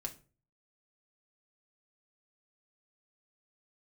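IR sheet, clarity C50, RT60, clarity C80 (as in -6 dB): 15.0 dB, 0.35 s, 21.0 dB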